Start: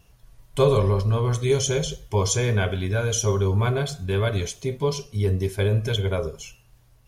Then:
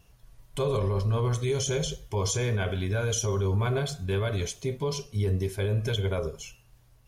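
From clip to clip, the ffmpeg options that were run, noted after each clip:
ffmpeg -i in.wav -af "alimiter=limit=-16.5dB:level=0:latency=1:release=41,volume=-2.5dB" out.wav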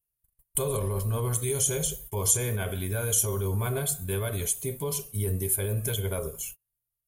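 ffmpeg -i in.wav -af "agate=range=-34dB:threshold=-45dB:ratio=16:detection=peak,aexciter=amount=14.8:drive=6.7:freq=8100,volume=-2.5dB" out.wav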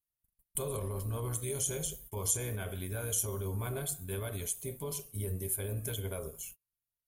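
ffmpeg -i in.wav -af "tremolo=f=180:d=0.4,volume=-6dB" out.wav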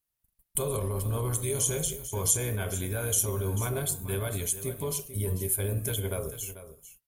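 ffmpeg -i in.wav -af "aecho=1:1:442:0.224,volume=6dB" out.wav

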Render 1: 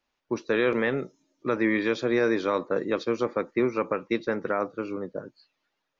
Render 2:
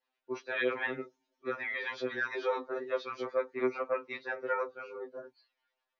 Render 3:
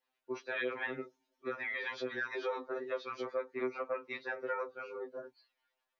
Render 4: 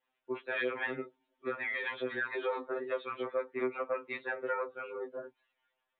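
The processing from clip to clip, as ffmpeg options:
ffmpeg -i in.wav -filter_complex "[0:a]acrossover=split=320 5200:gain=0.1 1 0.0708[link_01][link_02][link_03];[link_01][link_02][link_03]amix=inputs=3:normalize=0,acrossover=split=870[link_04][link_05];[link_04]aeval=exprs='val(0)*(1-0.5/2+0.5/2*cos(2*PI*9.2*n/s))':channel_layout=same[link_06];[link_05]aeval=exprs='val(0)*(1-0.5/2-0.5/2*cos(2*PI*9.2*n/s))':channel_layout=same[link_07];[link_06][link_07]amix=inputs=2:normalize=0,afftfilt=real='re*2.45*eq(mod(b,6),0)':imag='im*2.45*eq(mod(b,6),0)':win_size=2048:overlap=0.75" out.wav
ffmpeg -i in.wav -af "acompressor=threshold=-36dB:ratio=2" out.wav
ffmpeg -i in.wav -af "aresample=8000,aresample=44100,volume=2.5dB" out.wav

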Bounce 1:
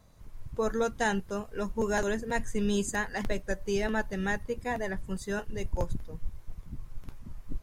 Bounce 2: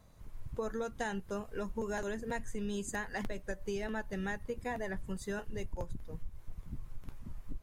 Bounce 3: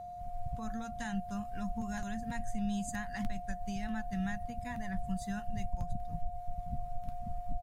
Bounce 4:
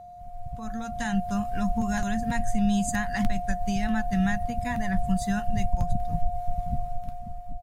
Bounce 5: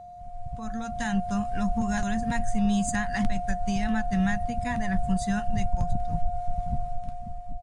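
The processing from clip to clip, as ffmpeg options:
ffmpeg -i in.wav -af "equalizer=frequency=5300:width_type=o:width=0.77:gain=-2.5,acompressor=threshold=-32dB:ratio=6,volume=-1.5dB" out.wav
ffmpeg -i in.wav -af "firequalizer=gain_entry='entry(210,0);entry(400,-26);entry(1000,-8);entry(4000,-5)':delay=0.05:min_phase=1,aeval=exprs='val(0)+0.00501*sin(2*PI*710*n/s)':channel_layout=same,volume=4dB" out.wav
ffmpeg -i in.wav -af "dynaudnorm=framelen=100:gausssize=17:maxgain=11dB" out.wav
ffmpeg -i in.wav -filter_complex "[0:a]aresample=22050,aresample=44100,asplit=2[link_01][link_02];[link_02]asoftclip=type=tanh:threshold=-22dB,volume=-5.5dB[link_03];[link_01][link_03]amix=inputs=2:normalize=0,volume=-3dB" out.wav

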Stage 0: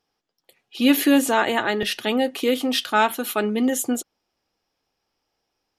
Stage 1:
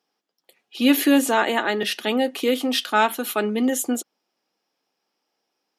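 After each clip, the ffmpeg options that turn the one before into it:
ffmpeg -i in.wav -af "highpass=frequency=180:width=0.5412,highpass=frequency=180:width=1.3066" out.wav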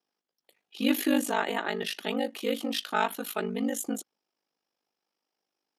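ffmpeg -i in.wav -af "aeval=exprs='val(0)*sin(2*PI*25*n/s)':channel_layout=same,volume=-5.5dB" out.wav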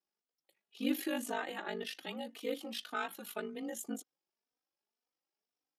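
ffmpeg -i in.wav -filter_complex "[0:a]asplit=2[link_01][link_02];[link_02]adelay=3.2,afreqshift=1.9[link_03];[link_01][link_03]amix=inputs=2:normalize=1,volume=-6.5dB" out.wav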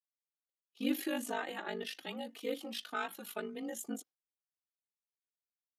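ffmpeg -i in.wav -af "agate=range=-33dB:threshold=-49dB:ratio=3:detection=peak" out.wav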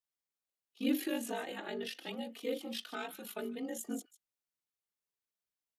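ffmpeg -i in.wav -filter_complex "[0:a]acrossover=split=770|1700[link_01][link_02][link_03];[link_01]asplit=2[link_04][link_05];[link_05]adelay=30,volume=-3dB[link_06];[link_04][link_06]amix=inputs=2:normalize=0[link_07];[link_02]acompressor=threshold=-53dB:ratio=6[link_08];[link_03]aecho=1:1:150:0.188[link_09];[link_07][link_08][link_09]amix=inputs=3:normalize=0" out.wav

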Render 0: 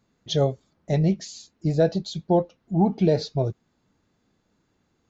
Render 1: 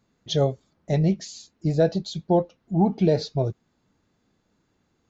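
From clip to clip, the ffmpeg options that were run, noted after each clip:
ffmpeg -i in.wav -af anull out.wav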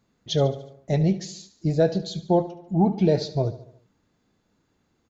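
ffmpeg -i in.wav -af "aecho=1:1:72|144|216|288|360:0.178|0.096|0.0519|0.028|0.0151" out.wav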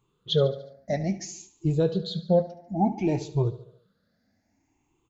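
ffmpeg -i in.wav -af "afftfilt=real='re*pow(10,17/40*sin(2*PI*(0.67*log(max(b,1)*sr/1024/100)/log(2)-(0.59)*(pts-256)/sr)))':imag='im*pow(10,17/40*sin(2*PI*(0.67*log(max(b,1)*sr/1024/100)/log(2)-(0.59)*(pts-256)/sr)))':win_size=1024:overlap=0.75,volume=-5.5dB" out.wav

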